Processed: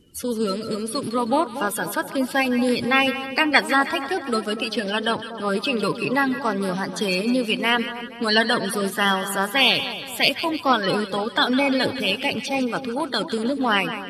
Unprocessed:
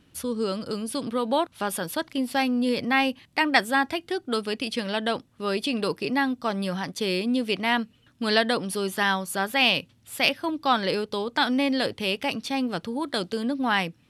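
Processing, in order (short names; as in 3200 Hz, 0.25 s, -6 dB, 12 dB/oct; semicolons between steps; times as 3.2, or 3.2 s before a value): bin magnitudes rounded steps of 30 dB; split-band echo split 1200 Hz, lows 0.238 s, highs 0.156 s, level -11 dB; gain +4 dB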